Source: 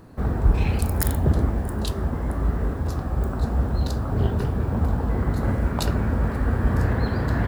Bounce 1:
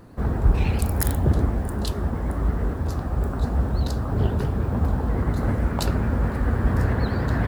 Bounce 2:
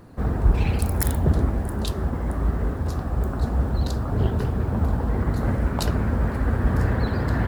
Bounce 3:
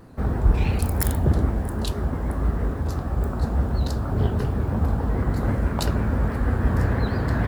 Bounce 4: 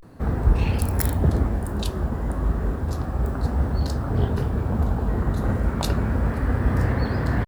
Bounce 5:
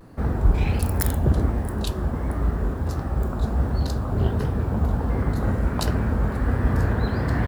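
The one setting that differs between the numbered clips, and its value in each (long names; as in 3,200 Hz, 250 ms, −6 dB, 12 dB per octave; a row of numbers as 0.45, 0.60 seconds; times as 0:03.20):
pitch vibrato, speed: 9.3, 15, 6.2, 0.33, 1.4 Hertz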